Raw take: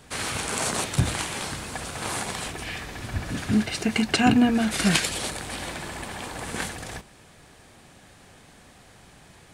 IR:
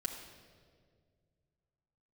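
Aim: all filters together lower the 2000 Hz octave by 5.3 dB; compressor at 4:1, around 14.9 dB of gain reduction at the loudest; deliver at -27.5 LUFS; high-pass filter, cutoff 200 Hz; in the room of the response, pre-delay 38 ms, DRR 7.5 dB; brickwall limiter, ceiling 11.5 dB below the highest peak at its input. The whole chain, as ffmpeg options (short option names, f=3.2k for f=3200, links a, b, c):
-filter_complex "[0:a]highpass=200,equalizer=f=2k:t=o:g=-7,acompressor=threshold=-35dB:ratio=4,alimiter=level_in=6.5dB:limit=-24dB:level=0:latency=1,volume=-6.5dB,asplit=2[a][b];[1:a]atrim=start_sample=2205,adelay=38[c];[b][c]afir=irnorm=-1:irlink=0,volume=-8dB[d];[a][d]amix=inputs=2:normalize=0,volume=11.5dB"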